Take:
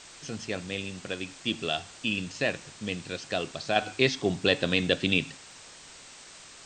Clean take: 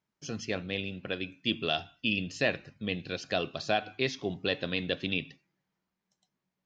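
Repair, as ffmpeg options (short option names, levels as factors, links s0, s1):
-af "adeclick=t=4,afwtdn=0.0056,asetnsamples=n=441:p=0,asendcmd='3.76 volume volume -6.5dB',volume=1"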